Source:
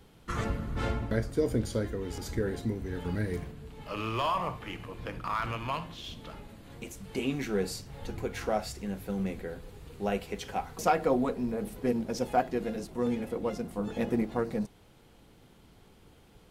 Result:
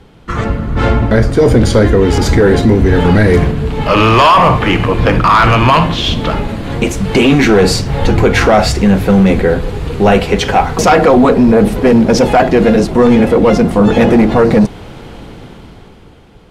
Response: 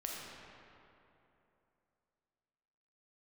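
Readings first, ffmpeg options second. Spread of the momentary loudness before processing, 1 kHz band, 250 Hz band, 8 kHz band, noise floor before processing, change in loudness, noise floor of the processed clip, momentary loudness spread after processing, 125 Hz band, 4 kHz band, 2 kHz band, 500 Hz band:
13 LU, +22.0 dB, +23.0 dB, +20.5 dB, −58 dBFS, +23.0 dB, −38 dBFS, 8 LU, +24.0 dB, +24.5 dB, +24.5 dB, +22.5 dB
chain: -af "dynaudnorm=framelen=110:gausssize=21:maxgain=15.5dB,aemphasis=mode=reproduction:type=50fm,apsyclip=18dB,volume=-3dB"

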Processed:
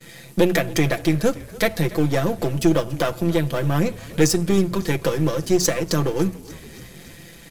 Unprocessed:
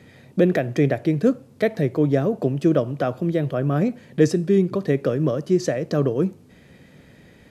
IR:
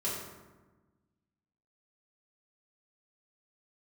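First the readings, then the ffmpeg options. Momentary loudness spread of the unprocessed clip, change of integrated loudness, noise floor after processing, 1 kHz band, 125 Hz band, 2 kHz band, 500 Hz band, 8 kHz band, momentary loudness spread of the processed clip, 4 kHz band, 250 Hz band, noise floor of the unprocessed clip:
5 LU, 0.0 dB, −43 dBFS, +3.5 dB, 0.0 dB, +5.5 dB, −1.0 dB, +14.0 dB, 7 LU, +11.5 dB, −0.5 dB, −51 dBFS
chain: -filter_complex "[0:a]aeval=exprs='if(lt(val(0),0),0.447*val(0),val(0))':channel_layout=same,agate=range=-33dB:threshold=-50dB:ratio=3:detection=peak,bandreject=frequency=60:width_type=h:width=6,bandreject=frequency=120:width_type=h:width=6,bandreject=frequency=180:width_type=h:width=6,aecho=1:1:5.9:0.65,asplit=2[link_01][link_02];[link_02]acompressor=threshold=-28dB:ratio=6,volume=0.5dB[link_03];[link_01][link_03]amix=inputs=2:normalize=0,crystalizer=i=5:c=0,asplit=2[link_04][link_05];[link_05]asplit=5[link_06][link_07][link_08][link_09][link_10];[link_06]adelay=284,afreqshift=-34,volume=-20dB[link_11];[link_07]adelay=568,afreqshift=-68,volume=-24dB[link_12];[link_08]adelay=852,afreqshift=-102,volume=-28dB[link_13];[link_09]adelay=1136,afreqshift=-136,volume=-32dB[link_14];[link_10]adelay=1420,afreqshift=-170,volume=-36.1dB[link_15];[link_11][link_12][link_13][link_14][link_15]amix=inputs=5:normalize=0[link_16];[link_04][link_16]amix=inputs=2:normalize=0,volume=-2dB"

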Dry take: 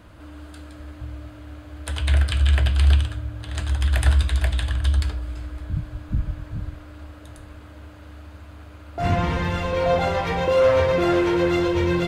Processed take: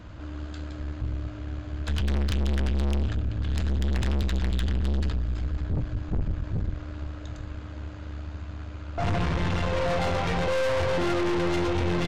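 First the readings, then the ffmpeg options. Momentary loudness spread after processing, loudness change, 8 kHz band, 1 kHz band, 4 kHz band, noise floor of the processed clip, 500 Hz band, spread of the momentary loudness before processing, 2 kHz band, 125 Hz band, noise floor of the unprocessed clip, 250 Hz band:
13 LU, −7.0 dB, −5.0 dB, −5.0 dB, −4.5 dB, −39 dBFS, −7.0 dB, 21 LU, −4.5 dB, −4.5 dB, −43 dBFS, −3.5 dB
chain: -filter_complex "[0:a]aresample=16000,aresample=44100,bass=frequency=250:gain=5,treble=frequency=4000:gain=1,asplit=2[link_01][link_02];[link_02]aecho=0:1:520:0.0794[link_03];[link_01][link_03]amix=inputs=2:normalize=0,aeval=exprs='(tanh(22.4*val(0)+0.55)-tanh(0.55))/22.4':channel_layout=same,volume=3dB"

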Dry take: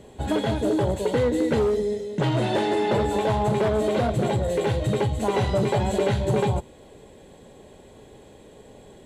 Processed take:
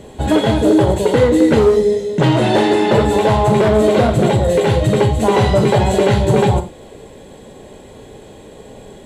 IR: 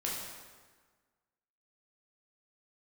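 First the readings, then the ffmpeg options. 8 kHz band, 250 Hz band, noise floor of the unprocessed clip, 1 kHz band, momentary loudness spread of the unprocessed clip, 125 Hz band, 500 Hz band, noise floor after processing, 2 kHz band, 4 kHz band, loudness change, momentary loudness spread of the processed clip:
+9.5 dB, +10.5 dB, −49 dBFS, +9.5 dB, 3 LU, +9.5 dB, +10.0 dB, −39 dBFS, +10.0 dB, +10.0 dB, +10.0 dB, 3 LU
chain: -filter_complex "[0:a]asplit=2[link_01][link_02];[1:a]atrim=start_sample=2205,afade=type=out:start_time=0.14:duration=0.01,atrim=end_sample=6615,asetrate=42336,aresample=44100[link_03];[link_02][link_03]afir=irnorm=-1:irlink=0,volume=-5dB[link_04];[link_01][link_04]amix=inputs=2:normalize=0,volume=6dB"

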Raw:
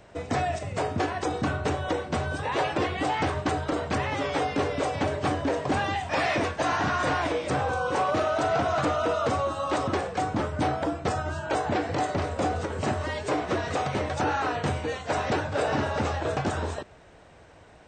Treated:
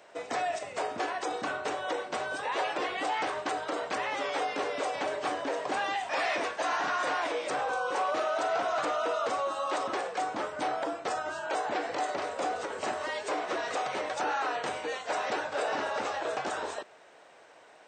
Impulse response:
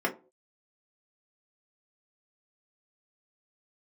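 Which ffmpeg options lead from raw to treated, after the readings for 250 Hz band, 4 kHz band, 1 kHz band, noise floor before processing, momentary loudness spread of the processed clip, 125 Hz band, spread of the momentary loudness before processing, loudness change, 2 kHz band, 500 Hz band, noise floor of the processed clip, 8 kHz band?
−11.5 dB, −2.5 dB, −3.0 dB, −52 dBFS, 4 LU, −25.0 dB, 4 LU, −4.5 dB, −2.5 dB, −4.5 dB, −55 dBFS, −2.0 dB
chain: -filter_complex "[0:a]highpass=470,asplit=2[link_01][link_02];[link_02]alimiter=level_in=0.5dB:limit=-24dB:level=0:latency=1,volume=-0.5dB,volume=2dB[link_03];[link_01][link_03]amix=inputs=2:normalize=0,volume=-7.5dB"

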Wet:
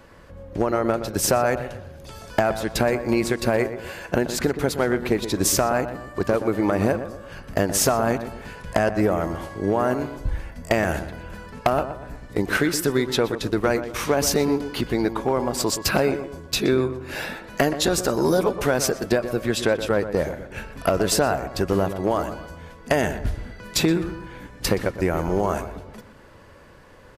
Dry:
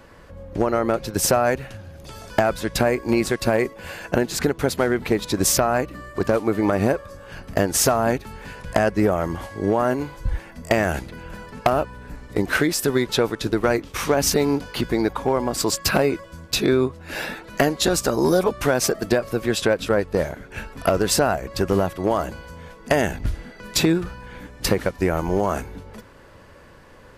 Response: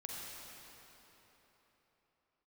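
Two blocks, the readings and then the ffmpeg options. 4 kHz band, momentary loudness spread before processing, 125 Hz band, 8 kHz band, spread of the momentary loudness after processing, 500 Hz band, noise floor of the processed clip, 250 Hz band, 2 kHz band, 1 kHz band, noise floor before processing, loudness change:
−1.5 dB, 14 LU, −1.0 dB, −1.5 dB, 12 LU, −1.0 dB, −47 dBFS, −1.0 dB, −1.5 dB, −1.0 dB, −46 dBFS, −1.0 dB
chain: -filter_complex "[0:a]asplit=2[link_01][link_02];[link_02]adelay=122,lowpass=frequency=1700:poles=1,volume=-10dB,asplit=2[link_03][link_04];[link_04]adelay=122,lowpass=frequency=1700:poles=1,volume=0.41,asplit=2[link_05][link_06];[link_06]adelay=122,lowpass=frequency=1700:poles=1,volume=0.41,asplit=2[link_07][link_08];[link_08]adelay=122,lowpass=frequency=1700:poles=1,volume=0.41[link_09];[link_01][link_03][link_05][link_07][link_09]amix=inputs=5:normalize=0,volume=-1.5dB"

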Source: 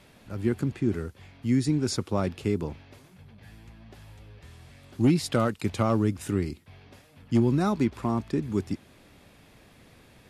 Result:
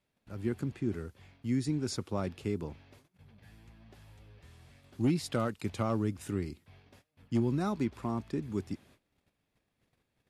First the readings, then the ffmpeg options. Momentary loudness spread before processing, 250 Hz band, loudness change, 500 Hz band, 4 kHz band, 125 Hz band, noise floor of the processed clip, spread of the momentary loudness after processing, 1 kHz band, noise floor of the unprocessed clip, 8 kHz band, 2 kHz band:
13 LU, −7.0 dB, −7.0 dB, −7.0 dB, −7.0 dB, −7.0 dB, −81 dBFS, 12 LU, −7.0 dB, −56 dBFS, −7.0 dB, −7.0 dB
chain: -af "agate=range=-19dB:threshold=-51dB:ratio=16:detection=peak,volume=-7dB"

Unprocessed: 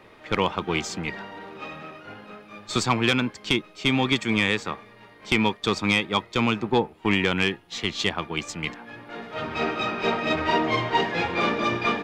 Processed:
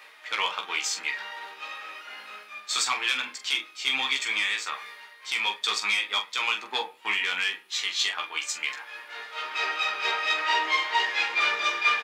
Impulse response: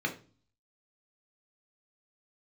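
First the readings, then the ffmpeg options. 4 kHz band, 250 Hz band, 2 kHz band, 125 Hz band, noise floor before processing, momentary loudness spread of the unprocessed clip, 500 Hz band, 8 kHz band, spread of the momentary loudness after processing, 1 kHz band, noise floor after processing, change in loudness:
+1.5 dB, −25.0 dB, +1.0 dB, below −30 dB, −51 dBFS, 17 LU, −14.5 dB, +4.5 dB, 15 LU, −3.0 dB, −51 dBFS, −1.5 dB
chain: -filter_complex "[0:a]highpass=1300,highshelf=frequency=5100:gain=6.5,alimiter=limit=-15dB:level=0:latency=1:release=64,areverse,acompressor=mode=upward:threshold=-36dB:ratio=2.5,areverse,aecho=1:1:15|44:0.631|0.376,asplit=2[link_01][link_02];[1:a]atrim=start_sample=2205,adelay=6[link_03];[link_02][link_03]afir=irnorm=-1:irlink=0,volume=-14dB[link_04];[link_01][link_04]amix=inputs=2:normalize=0"

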